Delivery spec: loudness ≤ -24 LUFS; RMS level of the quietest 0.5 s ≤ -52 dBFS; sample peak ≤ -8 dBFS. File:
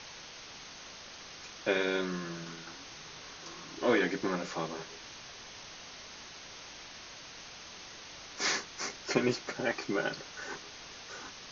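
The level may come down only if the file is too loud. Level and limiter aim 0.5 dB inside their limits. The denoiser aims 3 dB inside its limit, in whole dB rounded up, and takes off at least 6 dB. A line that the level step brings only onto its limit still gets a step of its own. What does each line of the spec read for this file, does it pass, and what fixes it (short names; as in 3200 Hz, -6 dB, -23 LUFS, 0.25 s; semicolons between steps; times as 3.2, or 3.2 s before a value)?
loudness -36.5 LUFS: OK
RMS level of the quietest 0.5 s -48 dBFS: fail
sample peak -14.0 dBFS: OK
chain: denoiser 7 dB, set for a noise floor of -48 dBFS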